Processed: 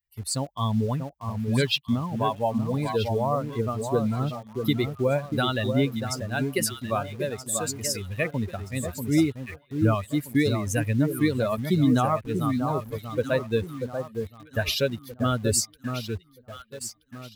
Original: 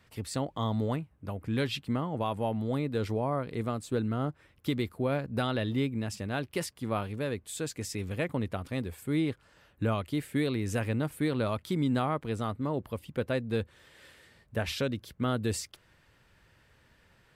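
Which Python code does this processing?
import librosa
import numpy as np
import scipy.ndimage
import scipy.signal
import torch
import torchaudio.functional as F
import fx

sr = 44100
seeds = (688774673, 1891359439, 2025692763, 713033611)

p1 = fx.bin_expand(x, sr, power=2.0)
p2 = fx.high_shelf(p1, sr, hz=4300.0, db=8.5)
p3 = fx.echo_alternate(p2, sr, ms=638, hz=1300.0, feedback_pct=55, wet_db=-6.0)
p4 = fx.quant_dither(p3, sr, seeds[0], bits=8, dither='none')
p5 = p3 + F.gain(torch.from_numpy(p4), -10.0).numpy()
y = F.gain(torch.from_numpy(p5), 7.5).numpy()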